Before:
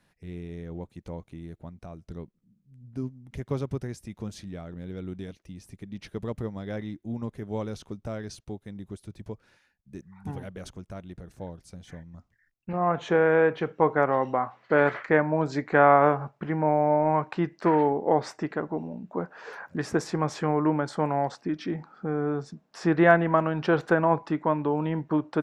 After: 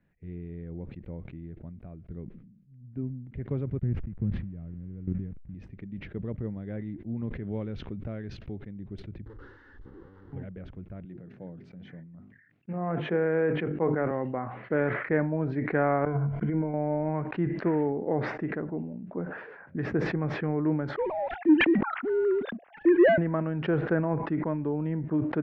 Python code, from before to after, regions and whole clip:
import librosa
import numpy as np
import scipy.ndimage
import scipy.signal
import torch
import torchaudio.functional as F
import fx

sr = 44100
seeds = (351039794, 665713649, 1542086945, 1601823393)

y = fx.chain(x, sr, fx.delta_hold(step_db=-47.0),
    fx.bass_treble(bass_db=13, treble_db=-13),
    fx.level_steps(step_db=13), at=(3.78, 5.55))
y = fx.chain(y, sr, fx.peak_eq(hz=4700.0, db=5.5, octaves=2.7),
    fx.pre_swell(db_per_s=78.0), at=(7.17, 8.57))
y = fx.chain(y, sr, fx.clip_1bit(),
    fx.fixed_phaser(hz=650.0, stages=6), at=(9.26, 10.33))
y = fx.chain(y, sr, fx.highpass(hz=130.0, slope=24),
    fx.hum_notches(base_hz=50, count=8),
    fx.sustainer(db_per_s=70.0), at=(11.05, 14.11))
y = fx.chain(y, sr, fx.ripple_eq(per_octave=1.8, db=12),
    fx.over_compress(threshold_db=-25.0, ratio=-0.5), at=(16.05, 16.74))
y = fx.chain(y, sr, fx.sine_speech(),
    fx.leveller(passes=2), at=(20.96, 23.18))
y = scipy.signal.sosfilt(scipy.signal.butter(4, 2100.0, 'lowpass', fs=sr, output='sos'), y)
y = fx.peak_eq(y, sr, hz=1000.0, db=-13.0, octaves=1.7)
y = fx.sustainer(y, sr, db_per_s=58.0)